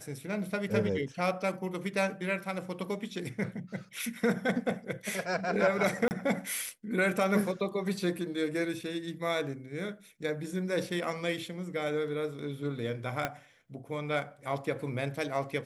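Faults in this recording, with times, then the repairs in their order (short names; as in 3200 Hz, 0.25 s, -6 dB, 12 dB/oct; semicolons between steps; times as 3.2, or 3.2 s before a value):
6.08–6.11 gap 29 ms
13.25 pop -15 dBFS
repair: de-click; interpolate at 6.08, 29 ms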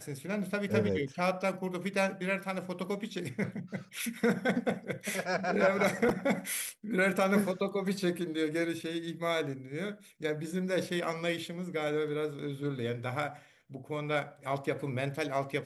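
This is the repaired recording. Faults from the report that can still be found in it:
13.25 pop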